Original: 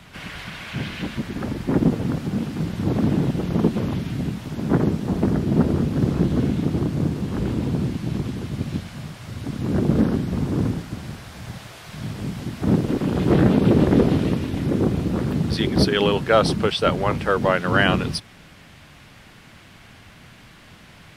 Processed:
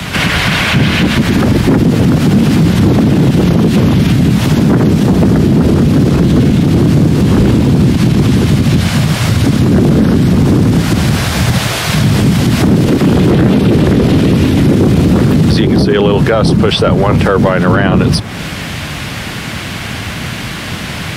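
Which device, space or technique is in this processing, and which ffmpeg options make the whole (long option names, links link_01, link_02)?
mastering chain: -filter_complex "[0:a]highpass=53,equalizer=frequency=900:width_type=o:width=2.5:gain=-2.5,acrossover=split=170|1400[link_01][link_02][link_03];[link_01]acompressor=threshold=-25dB:ratio=4[link_04];[link_02]acompressor=threshold=-23dB:ratio=4[link_05];[link_03]acompressor=threshold=-38dB:ratio=4[link_06];[link_04][link_05][link_06]amix=inputs=3:normalize=0,acompressor=threshold=-32dB:ratio=1.5,asoftclip=type=tanh:threshold=-18dB,alimiter=level_in=28dB:limit=-1dB:release=50:level=0:latency=1,volume=-1dB"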